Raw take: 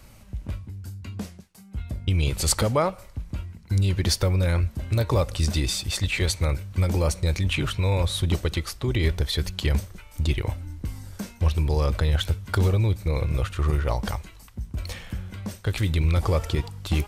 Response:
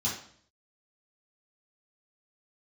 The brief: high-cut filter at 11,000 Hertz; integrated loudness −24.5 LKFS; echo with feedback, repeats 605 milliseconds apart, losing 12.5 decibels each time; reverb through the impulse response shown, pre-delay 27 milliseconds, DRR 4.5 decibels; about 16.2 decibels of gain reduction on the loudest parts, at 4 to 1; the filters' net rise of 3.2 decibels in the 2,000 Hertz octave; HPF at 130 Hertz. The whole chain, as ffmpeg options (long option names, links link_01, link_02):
-filter_complex "[0:a]highpass=130,lowpass=11000,equalizer=frequency=2000:width_type=o:gain=4,acompressor=threshold=-38dB:ratio=4,aecho=1:1:605|1210|1815:0.237|0.0569|0.0137,asplit=2[link_01][link_02];[1:a]atrim=start_sample=2205,adelay=27[link_03];[link_02][link_03]afir=irnorm=-1:irlink=0,volume=-11dB[link_04];[link_01][link_04]amix=inputs=2:normalize=0,volume=13dB"